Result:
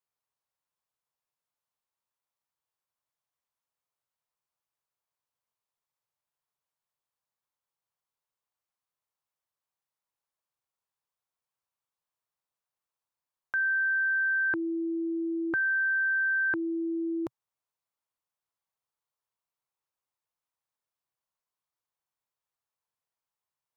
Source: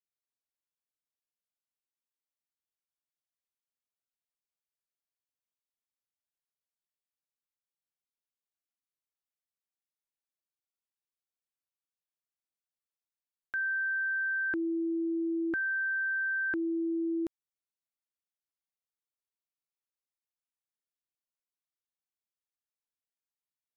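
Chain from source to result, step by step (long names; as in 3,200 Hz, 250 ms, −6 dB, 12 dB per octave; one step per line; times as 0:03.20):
octave-band graphic EQ 125/250/500/1,000 Hz +9/−5/+4/+11 dB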